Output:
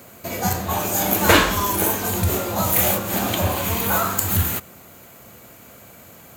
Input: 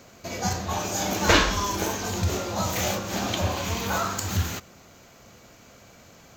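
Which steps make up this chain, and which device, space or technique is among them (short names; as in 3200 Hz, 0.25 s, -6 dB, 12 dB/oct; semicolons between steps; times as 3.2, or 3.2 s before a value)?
budget condenser microphone (HPF 65 Hz; resonant high shelf 7700 Hz +11 dB, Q 3); gain +5 dB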